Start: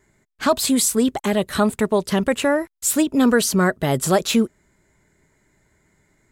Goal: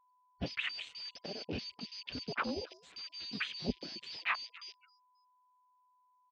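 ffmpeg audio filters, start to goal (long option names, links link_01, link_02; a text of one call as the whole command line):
ffmpeg -i in.wav -filter_complex "[0:a]afftfilt=real='real(if(lt(b,272),68*(eq(floor(b/68),0)*1+eq(floor(b/68),1)*2+eq(floor(b/68),2)*3+eq(floor(b/68),3)*0)+mod(b,68),b),0)':imag='imag(if(lt(b,272),68*(eq(floor(b/68),0)*1+eq(floor(b/68),1)*2+eq(floor(b/68),2)*3+eq(floor(b/68),3)*0)+mod(b,68),b),0)':win_size=2048:overlap=0.75,asplit=4[link_01][link_02][link_03][link_04];[link_02]adelay=268,afreqshift=140,volume=-19dB[link_05];[link_03]adelay=536,afreqshift=280,volume=-27.4dB[link_06];[link_04]adelay=804,afreqshift=420,volume=-35.8dB[link_07];[link_01][link_05][link_06][link_07]amix=inputs=4:normalize=0,aeval=exprs='0.211*(abs(mod(val(0)/0.211+3,4)-2)-1)':channel_layout=same,afftfilt=real='re*gte(hypot(re,im),0.01)':imag='im*gte(hypot(re,im),0.01)':win_size=1024:overlap=0.75,alimiter=limit=-16.5dB:level=0:latency=1:release=233,highpass=71,adynamicequalizer=threshold=0.00251:dfrequency=250:dqfactor=4.6:tfrequency=250:tqfactor=4.6:attack=5:release=100:ratio=0.375:range=2:mode=boostabove:tftype=bell,areverse,acompressor=threshold=-30dB:ratio=20,areverse,asoftclip=type=tanh:threshold=-29dB,aeval=exprs='val(0)+0.000891*sin(2*PI*1000*n/s)':channel_layout=same,afwtdn=0.00794,lowpass=frequency=2800:width=0.5412,lowpass=frequency=2800:width=1.3066,volume=8.5dB" out.wav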